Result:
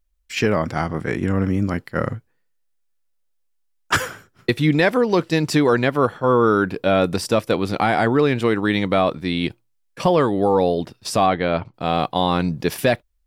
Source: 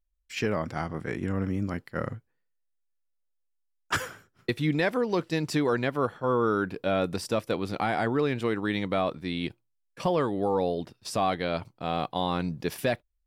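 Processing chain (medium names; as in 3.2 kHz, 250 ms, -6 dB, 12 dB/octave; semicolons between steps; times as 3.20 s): 11.26–11.74 s: low-pass 2.8 kHz 12 dB/octave; trim +9 dB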